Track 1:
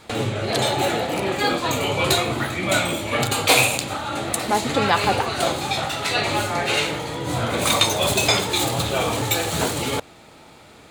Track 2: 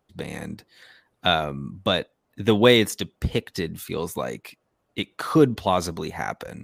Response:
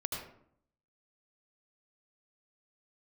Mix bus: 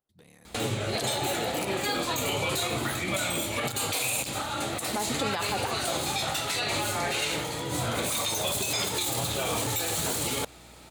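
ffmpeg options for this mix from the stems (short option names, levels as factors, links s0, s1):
-filter_complex "[0:a]aeval=exprs='val(0)+0.00355*(sin(2*PI*60*n/s)+sin(2*PI*2*60*n/s)/2+sin(2*PI*3*60*n/s)/3+sin(2*PI*4*60*n/s)/4+sin(2*PI*5*60*n/s)/5)':c=same,adelay=450,volume=0.531[s0];[1:a]asoftclip=type=tanh:threshold=0.0944,alimiter=level_in=1.41:limit=0.0631:level=0:latency=1:release=170,volume=0.708,volume=0.119[s1];[s0][s1]amix=inputs=2:normalize=0,highshelf=f=5200:g=11,alimiter=limit=0.112:level=0:latency=1:release=57"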